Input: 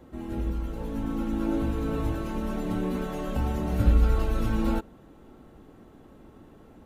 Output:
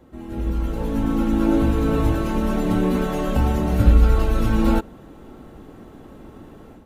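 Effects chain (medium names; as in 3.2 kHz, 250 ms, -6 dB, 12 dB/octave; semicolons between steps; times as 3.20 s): level rider gain up to 9 dB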